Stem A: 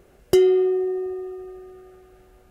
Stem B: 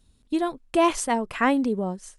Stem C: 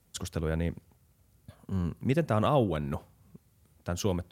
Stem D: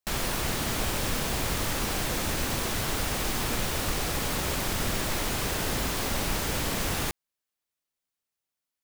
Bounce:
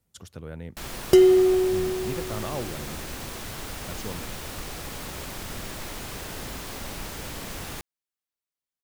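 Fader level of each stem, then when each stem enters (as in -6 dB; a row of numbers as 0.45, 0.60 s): +1.0 dB, off, -8.0 dB, -7.0 dB; 0.80 s, off, 0.00 s, 0.70 s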